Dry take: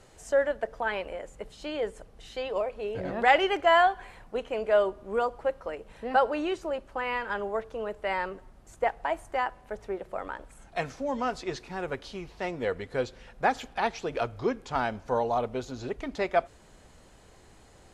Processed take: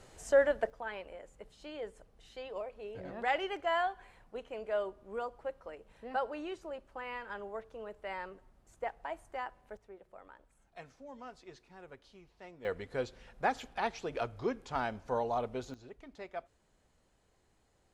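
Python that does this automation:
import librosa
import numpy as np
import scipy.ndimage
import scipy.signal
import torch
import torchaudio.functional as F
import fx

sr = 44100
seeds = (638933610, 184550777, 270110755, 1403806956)

y = fx.gain(x, sr, db=fx.steps((0.0, -1.0), (0.7, -11.0), (9.77, -18.5), (12.65, -6.0), (15.74, -17.0)))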